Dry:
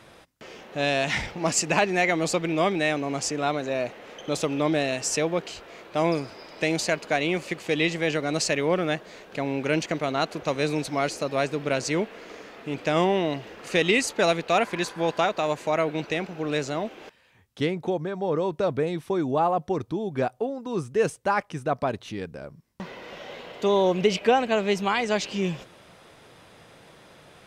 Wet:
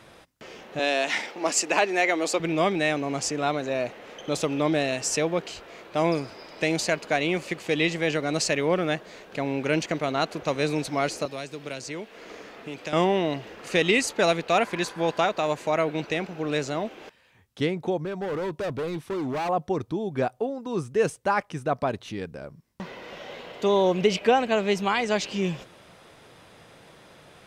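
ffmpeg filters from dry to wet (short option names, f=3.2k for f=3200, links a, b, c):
-filter_complex "[0:a]asettb=1/sr,asplit=3[a][b][c];[a]atrim=end=0.794[d];[b]atrim=start=0.79:end=2.4,asetpts=PTS-STARTPTS,afade=t=in:d=0.004:c=qsin,afade=t=out:st=1.606:d=0.004:c=qsin,highpass=f=270:w=0.5412,highpass=f=270:w=1.3066[e];[c]atrim=start=2.396[f];[d][e]acrossfade=d=0.004:c1=hsin:c2=qsin[g];[g][f]acrossfade=d=0.004:c1=qsin:c2=hsin,asettb=1/sr,asplit=3[h][i][j];[h]atrim=end=11.254[k];[i]atrim=start=11.25:end=12.93,asetpts=PTS-STARTPTS,afade=t=in:d=0.004:c=qsin,afade=t=out:st=1.676:d=0.004:c=qsin,acrossover=split=340|2900[l][m][n];[l]acompressor=threshold=-42dB:ratio=4[o];[m]acompressor=threshold=-37dB:ratio=4[p];[n]acompressor=threshold=-39dB:ratio=4[q];[o][p][q]amix=inputs=3:normalize=0[r];[j]atrim=start=12.926[s];[k][r]acrossfade=d=0.004:c1=hsin:c2=qsin[t];[t][s]acrossfade=d=0.004:c1=qsin:c2=hsin,asettb=1/sr,asplit=3[u][v][w];[u]atrim=end=17.974[x];[v]atrim=start=17.97:end=19.49,asetpts=PTS-STARTPTS,afade=t=in:d=0.004:c=qsin,afade=t=out:st=1.516:d=0.004:c=qsin,volume=26.5dB,asoftclip=hard,volume=-26.5dB[y];[w]atrim=start=19.486[z];[x][y]acrossfade=d=0.004:c1=hsin:c2=qsin[aa];[aa][z]acrossfade=d=0.004:c1=qsin:c2=hsin"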